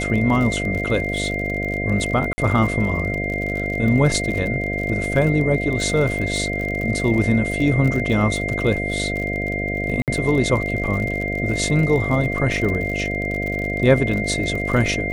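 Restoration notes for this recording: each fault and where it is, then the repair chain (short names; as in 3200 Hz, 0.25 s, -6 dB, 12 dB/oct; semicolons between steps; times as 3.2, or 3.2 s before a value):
buzz 50 Hz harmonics 14 -26 dBFS
crackle 46/s -26 dBFS
tone 2100 Hz -25 dBFS
2.33–2.38 gap 50 ms
10.02–10.08 gap 58 ms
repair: de-click; de-hum 50 Hz, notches 14; notch 2100 Hz, Q 30; interpolate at 2.33, 50 ms; interpolate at 10.02, 58 ms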